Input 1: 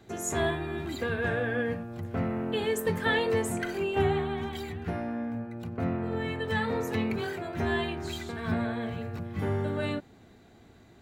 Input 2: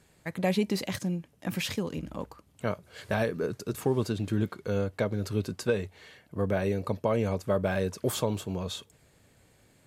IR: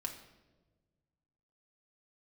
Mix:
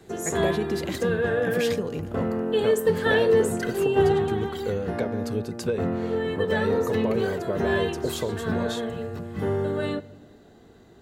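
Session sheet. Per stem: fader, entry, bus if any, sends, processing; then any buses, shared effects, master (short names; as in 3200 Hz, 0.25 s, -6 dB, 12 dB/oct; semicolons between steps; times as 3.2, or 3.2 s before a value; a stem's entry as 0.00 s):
-0.5 dB, 0.00 s, send -7 dB, notch 2300 Hz, Q 5.2
+2.0 dB, 0.00 s, no send, compressor 4:1, threshold -30 dBFS, peak gain reduction 8.5 dB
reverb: on, pre-delay 4 ms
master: bell 440 Hz +7.5 dB 0.45 oct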